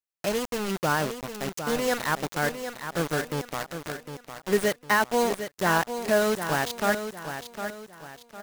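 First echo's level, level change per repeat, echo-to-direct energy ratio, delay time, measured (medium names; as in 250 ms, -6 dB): -9.0 dB, -8.5 dB, -8.5 dB, 756 ms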